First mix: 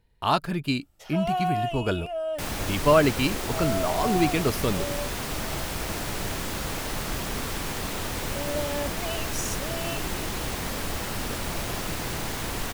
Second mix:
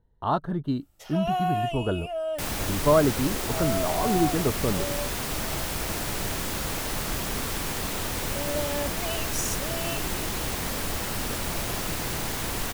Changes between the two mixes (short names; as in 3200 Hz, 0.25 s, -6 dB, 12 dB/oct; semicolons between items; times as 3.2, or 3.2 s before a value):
speech: add running mean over 18 samples; master: add high shelf 6900 Hz +4.5 dB